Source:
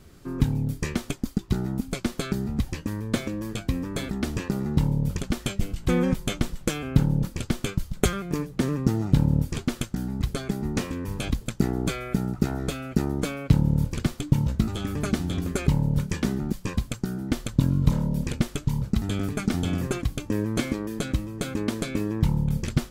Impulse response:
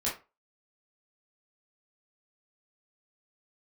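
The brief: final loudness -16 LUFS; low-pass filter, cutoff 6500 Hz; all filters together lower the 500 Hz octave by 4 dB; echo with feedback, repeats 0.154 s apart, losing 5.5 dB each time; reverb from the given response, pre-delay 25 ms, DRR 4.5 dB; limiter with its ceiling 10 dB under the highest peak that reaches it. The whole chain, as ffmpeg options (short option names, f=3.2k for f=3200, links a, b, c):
-filter_complex "[0:a]lowpass=6.5k,equalizer=f=500:t=o:g=-5.5,alimiter=limit=-15.5dB:level=0:latency=1,aecho=1:1:154|308|462|616|770|924|1078:0.531|0.281|0.149|0.079|0.0419|0.0222|0.0118,asplit=2[a][b];[1:a]atrim=start_sample=2205,adelay=25[c];[b][c]afir=irnorm=-1:irlink=0,volume=-10.5dB[d];[a][d]amix=inputs=2:normalize=0,volume=11dB"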